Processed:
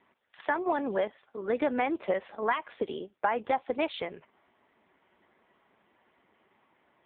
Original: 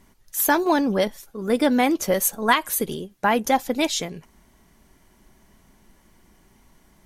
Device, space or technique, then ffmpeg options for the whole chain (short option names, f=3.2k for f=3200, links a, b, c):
voicemail: -af "highpass=410,lowpass=3k,acompressor=threshold=-23dB:ratio=6" -ar 8000 -c:a libopencore_amrnb -b:a 5900